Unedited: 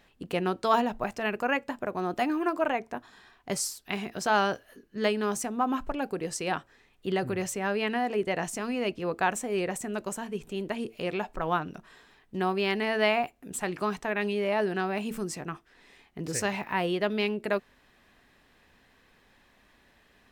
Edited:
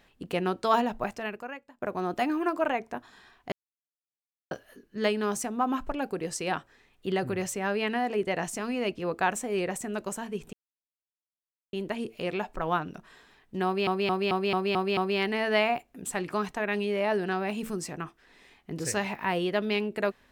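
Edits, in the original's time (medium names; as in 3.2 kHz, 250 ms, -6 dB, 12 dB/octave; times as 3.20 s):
1.07–1.82 s: fade out quadratic, to -21.5 dB
3.52–4.51 s: mute
10.53 s: insert silence 1.20 s
12.45 s: stutter 0.22 s, 7 plays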